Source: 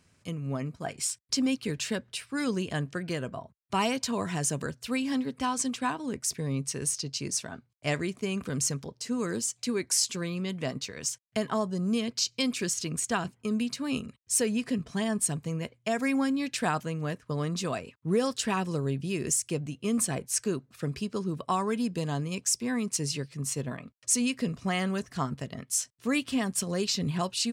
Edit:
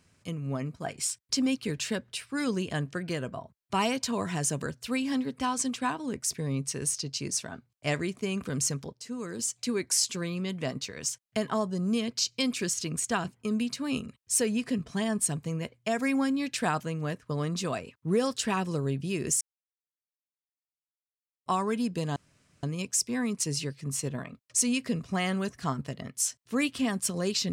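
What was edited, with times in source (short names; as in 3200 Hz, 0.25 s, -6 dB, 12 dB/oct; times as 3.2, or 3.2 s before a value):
8.93–9.39 gain -6 dB
19.41–21.46 mute
22.16 insert room tone 0.47 s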